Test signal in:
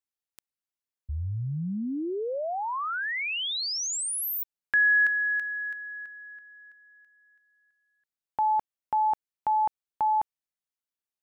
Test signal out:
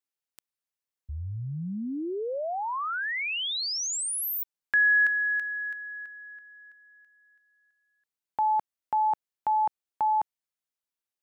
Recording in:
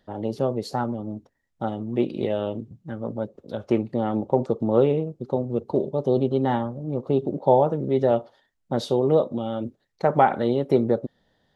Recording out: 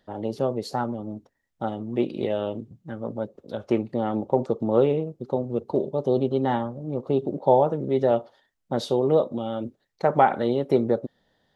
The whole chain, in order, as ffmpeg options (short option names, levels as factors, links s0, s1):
-af "lowshelf=f=210:g=-4"